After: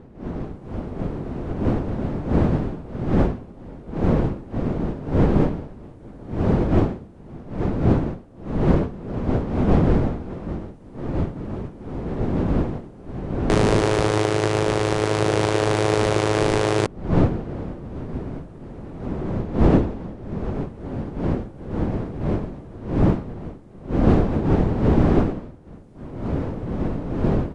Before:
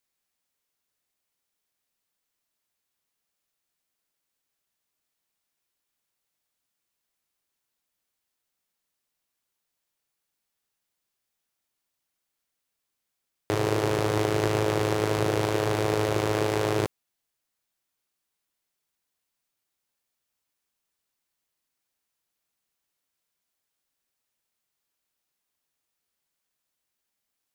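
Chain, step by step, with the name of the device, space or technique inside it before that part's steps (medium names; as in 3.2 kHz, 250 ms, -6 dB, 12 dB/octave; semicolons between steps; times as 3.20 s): smartphone video outdoors (wind noise 290 Hz -30 dBFS; level rider gain up to 14.5 dB; trim -3.5 dB; AAC 96 kbps 22.05 kHz)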